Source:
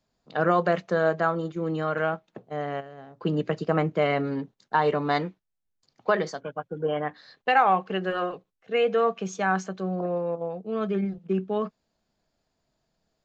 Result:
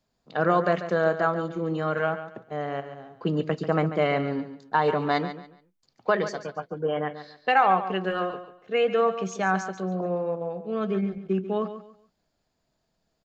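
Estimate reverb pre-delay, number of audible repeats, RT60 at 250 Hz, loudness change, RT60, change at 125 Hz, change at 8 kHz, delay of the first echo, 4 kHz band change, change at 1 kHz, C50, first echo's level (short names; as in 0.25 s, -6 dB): none, 3, none, +0.5 dB, none, +0.5 dB, n/a, 0.141 s, +0.5 dB, +0.5 dB, none, -11.5 dB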